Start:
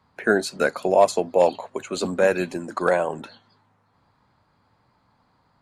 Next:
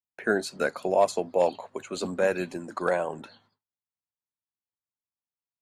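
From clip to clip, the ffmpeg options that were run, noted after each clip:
ffmpeg -i in.wav -af "agate=range=-39dB:threshold=-57dB:ratio=16:detection=peak,volume=-5.5dB" out.wav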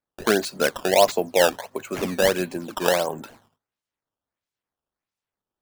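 ffmpeg -i in.wav -af "acrusher=samples=12:mix=1:aa=0.000001:lfo=1:lforange=19.2:lforate=1.5,volume=5dB" out.wav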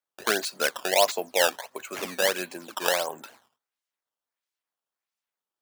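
ffmpeg -i in.wav -af "highpass=frequency=1000:poles=1" out.wav

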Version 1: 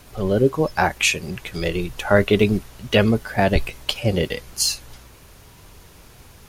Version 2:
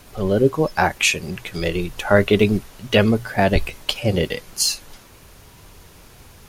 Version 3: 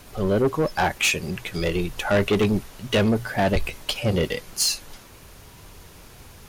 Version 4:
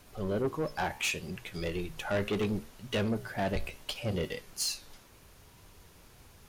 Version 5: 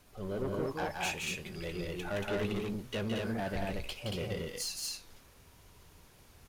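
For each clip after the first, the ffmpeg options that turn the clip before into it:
ffmpeg -i in.wav -af "bandreject=frequency=60:width_type=h:width=6,bandreject=frequency=120:width_type=h:width=6,volume=1dB" out.wav
ffmpeg -i in.wav -af "asoftclip=type=tanh:threshold=-14.5dB" out.wav
ffmpeg -i in.wav -af "flanger=delay=9.8:depth=7.1:regen=-82:speed=0.7:shape=sinusoidal,volume=-6dB" out.wav
ffmpeg -i in.wav -af "aecho=1:1:169.1|230.3:0.631|0.794,volume=-5.5dB" out.wav

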